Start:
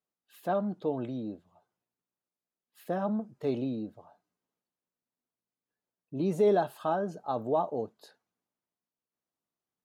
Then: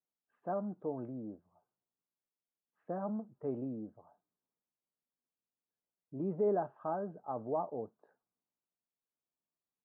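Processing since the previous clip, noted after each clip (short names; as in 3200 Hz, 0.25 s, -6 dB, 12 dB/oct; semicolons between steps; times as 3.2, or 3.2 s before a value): LPF 1400 Hz 24 dB/oct; gain -7 dB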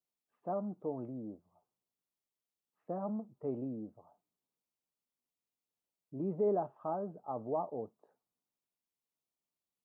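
bell 1600 Hz -12 dB 0.3 oct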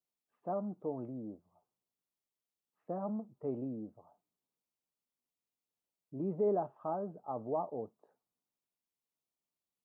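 nothing audible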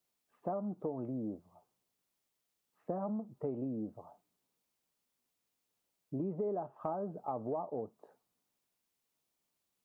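compressor 6:1, threshold -43 dBFS, peak gain reduction 14.5 dB; gain +8.5 dB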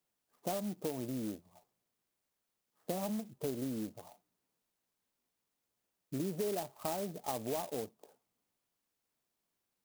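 clock jitter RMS 0.1 ms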